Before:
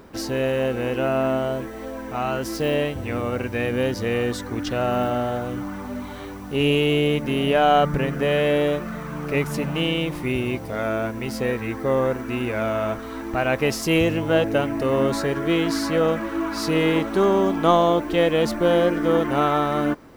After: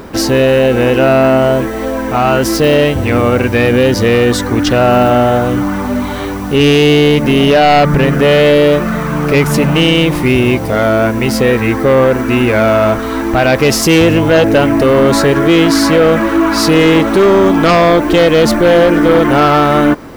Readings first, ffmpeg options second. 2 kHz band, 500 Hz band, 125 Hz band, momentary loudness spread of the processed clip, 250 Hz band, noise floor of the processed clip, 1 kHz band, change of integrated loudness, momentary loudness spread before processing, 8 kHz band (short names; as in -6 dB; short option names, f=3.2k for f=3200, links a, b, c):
+13.0 dB, +12.0 dB, +13.0 dB, 5 LU, +13.0 dB, -18 dBFS, +11.0 dB, +12.5 dB, 9 LU, +15.0 dB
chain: -filter_complex "[0:a]asplit=2[a][b];[b]alimiter=limit=-16.5dB:level=0:latency=1:release=78,volume=-2dB[c];[a][c]amix=inputs=2:normalize=0,aeval=exprs='0.668*sin(PI/2*2.24*val(0)/0.668)':c=same"